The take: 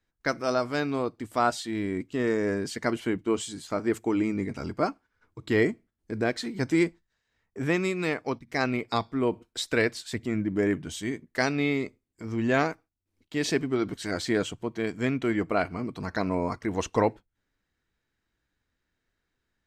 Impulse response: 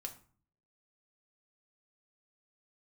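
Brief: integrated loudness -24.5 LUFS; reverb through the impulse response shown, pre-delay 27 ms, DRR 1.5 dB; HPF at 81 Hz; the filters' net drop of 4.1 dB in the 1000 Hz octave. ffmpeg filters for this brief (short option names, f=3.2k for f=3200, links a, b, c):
-filter_complex "[0:a]highpass=81,equalizer=f=1k:t=o:g=-6,asplit=2[a][b];[1:a]atrim=start_sample=2205,adelay=27[c];[b][c]afir=irnorm=-1:irlink=0,volume=1.5dB[d];[a][d]amix=inputs=2:normalize=0,volume=3dB"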